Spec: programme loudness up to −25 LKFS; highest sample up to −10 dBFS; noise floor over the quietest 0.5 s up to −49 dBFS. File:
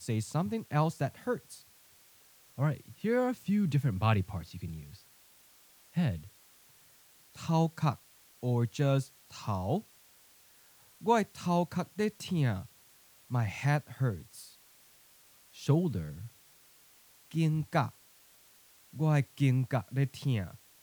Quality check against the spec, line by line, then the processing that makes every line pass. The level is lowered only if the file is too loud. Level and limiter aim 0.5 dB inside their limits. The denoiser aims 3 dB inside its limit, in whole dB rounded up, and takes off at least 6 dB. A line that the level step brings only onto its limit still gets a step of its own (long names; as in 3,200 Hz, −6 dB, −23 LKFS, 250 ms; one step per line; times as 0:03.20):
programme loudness −32.0 LKFS: in spec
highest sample −13.0 dBFS: in spec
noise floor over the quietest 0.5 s −61 dBFS: in spec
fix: no processing needed